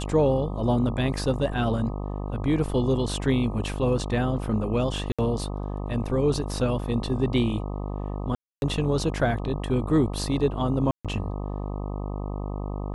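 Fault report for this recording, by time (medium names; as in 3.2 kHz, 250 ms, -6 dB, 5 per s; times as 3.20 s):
buzz 50 Hz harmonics 25 -31 dBFS
5.12–5.19 s: dropout 66 ms
8.35–8.62 s: dropout 271 ms
10.91–11.05 s: dropout 136 ms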